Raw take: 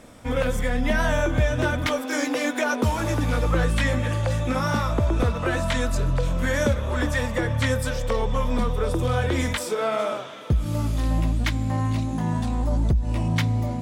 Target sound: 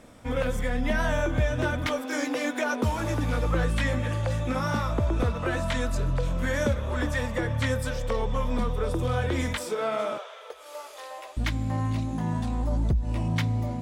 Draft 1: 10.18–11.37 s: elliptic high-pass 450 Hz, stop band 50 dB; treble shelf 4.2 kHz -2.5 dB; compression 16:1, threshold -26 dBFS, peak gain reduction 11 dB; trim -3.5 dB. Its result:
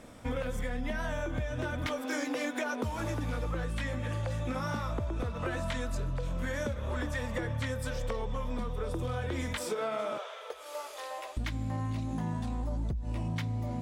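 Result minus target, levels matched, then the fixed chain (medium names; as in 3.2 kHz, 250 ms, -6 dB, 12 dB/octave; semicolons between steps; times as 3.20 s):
compression: peak gain reduction +11 dB
10.18–11.37 s: elliptic high-pass 450 Hz, stop band 50 dB; treble shelf 4.2 kHz -2.5 dB; trim -3.5 dB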